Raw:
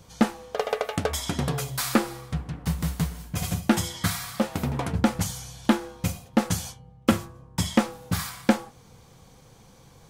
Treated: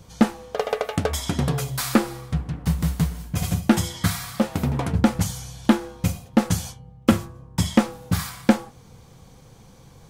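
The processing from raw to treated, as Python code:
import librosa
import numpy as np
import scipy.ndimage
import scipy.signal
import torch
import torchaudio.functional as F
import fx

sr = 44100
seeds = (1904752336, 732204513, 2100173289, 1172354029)

y = fx.low_shelf(x, sr, hz=330.0, db=4.5)
y = F.gain(torch.from_numpy(y), 1.0).numpy()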